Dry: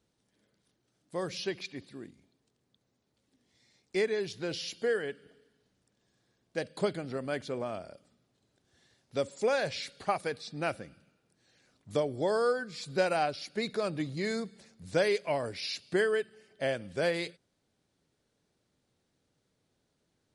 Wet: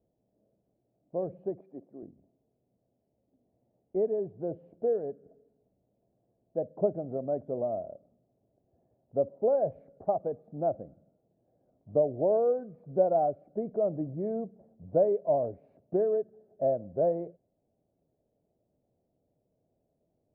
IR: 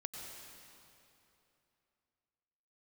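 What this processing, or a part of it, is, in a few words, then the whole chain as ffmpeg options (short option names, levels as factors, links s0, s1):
under water: -filter_complex "[0:a]lowpass=f=680:w=0.5412,lowpass=f=680:w=1.3066,equalizer=f=660:t=o:w=0.48:g=10.5,asettb=1/sr,asplit=3[s0][s1][s2];[s0]atrim=end=1.604[s3];[s1]atrim=start=1.6:end=2.03,asetpts=PTS-STARTPTS,afade=t=in:d=0.004:c=qsin,afade=t=out:st=0.426:d=0.004:c=qsin,highpass=240[s4];[s2]atrim=start=2.026[s5];[s3][s4]acrossfade=d=0.004:c1=hsin:c2=qsin[s6];[s6][s5]acrossfade=d=0.004:c1=qsin:c2=hsin"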